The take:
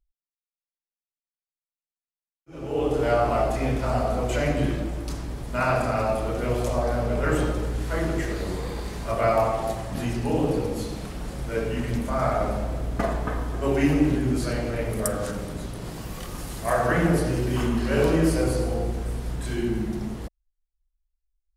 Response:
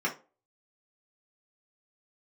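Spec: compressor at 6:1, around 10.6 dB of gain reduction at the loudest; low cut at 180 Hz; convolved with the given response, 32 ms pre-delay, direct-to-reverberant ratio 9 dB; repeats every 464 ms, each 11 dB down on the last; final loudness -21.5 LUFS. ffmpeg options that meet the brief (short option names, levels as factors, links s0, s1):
-filter_complex "[0:a]highpass=180,acompressor=threshold=0.0355:ratio=6,aecho=1:1:464|928|1392:0.282|0.0789|0.0221,asplit=2[s0][s1];[1:a]atrim=start_sample=2205,adelay=32[s2];[s1][s2]afir=irnorm=-1:irlink=0,volume=0.133[s3];[s0][s3]amix=inputs=2:normalize=0,volume=3.76"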